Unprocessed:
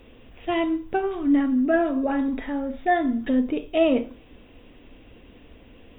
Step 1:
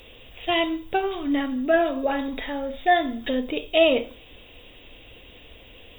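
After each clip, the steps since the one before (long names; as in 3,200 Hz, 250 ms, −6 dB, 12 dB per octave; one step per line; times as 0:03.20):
drawn EQ curve 120 Hz 0 dB, 240 Hz −7 dB, 520 Hz +3 dB, 1,500 Hz +1 dB, 4,100 Hz +15 dB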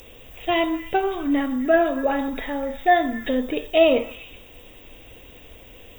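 high shelf with overshoot 4,400 Hz +8.5 dB, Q 3
echo through a band-pass that steps 125 ms, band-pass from 1,100 Hz, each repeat 0.7 octaves, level −10.5 dB
level +2.5 dB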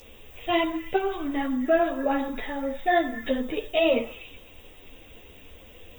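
string-ensemble chorus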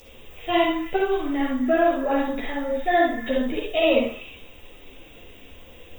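convolution reverb RT60 0.30 s, pre-delay 44 ms, DRR 0 dB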